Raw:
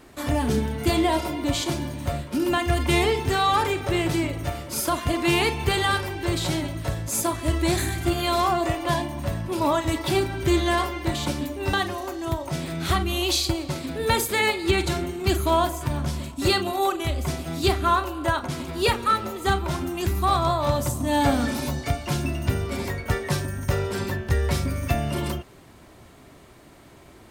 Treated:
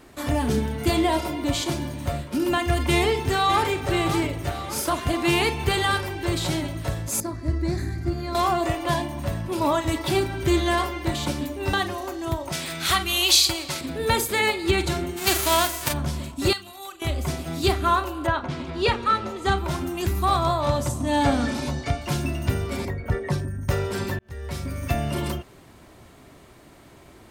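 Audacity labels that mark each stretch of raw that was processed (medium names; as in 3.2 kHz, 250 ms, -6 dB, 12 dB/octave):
2.920000	3.690000	echo throw 570 ms, feedback 50%, level -9.5 dB
4.490000	5.040000	loudspeaker Doppler distortion depth 0.16 ms
7.200000	8.350000	FFT filter 220 Hz 0 dB, 860 Hz -11 dB, 2 kHz -8 dB, 3.2 kHz -23 dB, 4.6 kHz -6 dB, 8.5 kHz -19 dB
12.520000	13.810000	tilt shelf lows -8 dB, about 800 Hz
15.160000	15.920000	formants flattened exponent 0.3
16.530000	17.020000	amplifier tone stack bass-middle-treble 5-5-5
18.260000	19.560000	low-pass 3.4 kHz -> 7.7 kHz
20.600000	22.000000	low-pass 11 kHz -> 6.8 kHz
22.850000	23.690000	resonances exaggerated exponent 1.5
24.190000	25.010000	fade in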